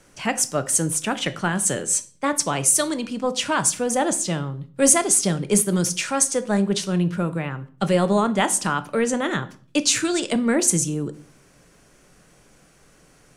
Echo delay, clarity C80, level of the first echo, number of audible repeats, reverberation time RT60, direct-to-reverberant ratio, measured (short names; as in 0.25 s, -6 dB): none, 21.5 dB, none, none, 0.45 s, 11.0 dB